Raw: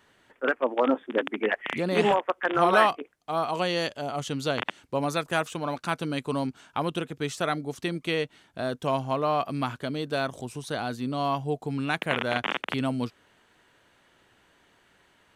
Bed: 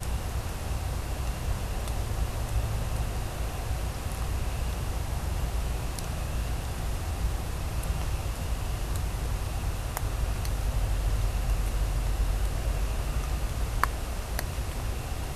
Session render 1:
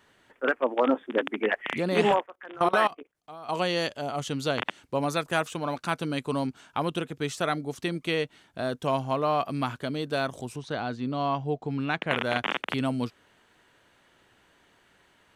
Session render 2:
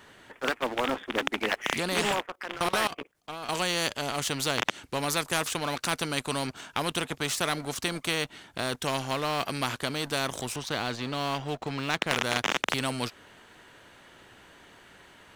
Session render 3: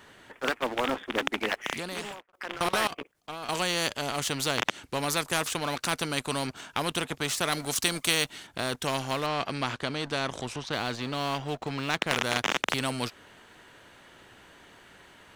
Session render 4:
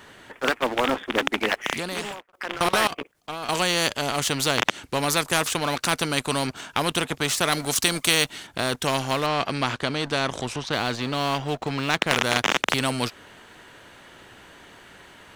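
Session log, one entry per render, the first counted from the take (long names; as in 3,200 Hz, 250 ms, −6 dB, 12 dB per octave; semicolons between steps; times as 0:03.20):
0:02.23–0:03.49: output level in coarse steps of 21 dB; 0:10.56–0:12.11: high-frequency loss of the air 120 metres
leveller curve on the samples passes 1; every bin compressed towards the loudest bin 2 to 1
0:01.37–0:02.33: fade out; 0:07.52–0:08.47: high-shelf EQ 3,400 Hz +9.5 dB; 0:09.26–0:10.73: high-frequency loss of the air 74 metres
level +5.5 dB; brickwall limiter −3 dBFS, peak gain reduction 1.5 dB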